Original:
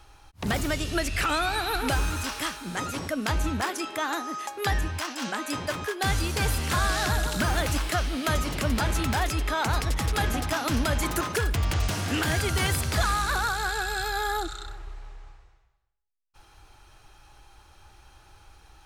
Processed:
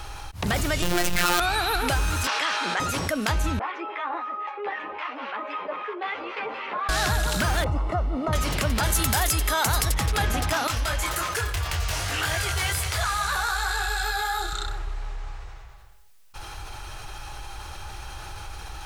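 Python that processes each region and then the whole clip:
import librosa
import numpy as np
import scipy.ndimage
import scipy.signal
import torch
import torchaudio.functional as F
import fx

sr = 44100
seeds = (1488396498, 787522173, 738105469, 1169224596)

y = fx.chain(x, sr, fx.halfwave_hold(),
    fx.robotise(hz=176.0),
    fx.env_flatten(amount_pct=70), at=(0.82, 1.4))
y = fx.chain(y, sr, fx.bandpass_edges(low_hz=480.0, high_hz=4400.0),
    fx.env_flatten(amount_pct=70), at=(2.27, 2.8))
y = fx.chain(y, sr, fx.harmonic_tremolo(hz=3.8, depth_pct=70, crossover_hz=970.0),
    fx.cabinet(low_hz=330.0, low_slope=24, high_hz=2300.0, hz=(340.0, 700.0, 1600.0), db=(-6, -5, -10)),
    fx.ensemble(), at=(3.59, 6.89))
y = fx.chain(y, sr, fx.cvsd(bps=64000),
    fx.savgol(points=65), at=(7.64, 8.33))
y = fx.chain(y, sr, fx.peak_eq(hz=13000.0, db=14.5, octaves=1.5),
    fx.notch(hz=2500.0, q=19.0), at=(8.83, 9.92))
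y = fx.chain(y, sr, fx.peak_eq(hz=220.0, db=-14.5, octaves=1.5),
    fx.echo_split(split_hz=430.0, low_ms=109, high_ms=212, feedback_pct=52, wet_db=-13),
    fx.detune_double(cents=22), at=(10.67, 14.53))
y = fx.peak_eq(y, sr, hz=270.0, db=-5.0, octaves=1.1)
y = fx.env_flatten(y, sr, amount_pct=50)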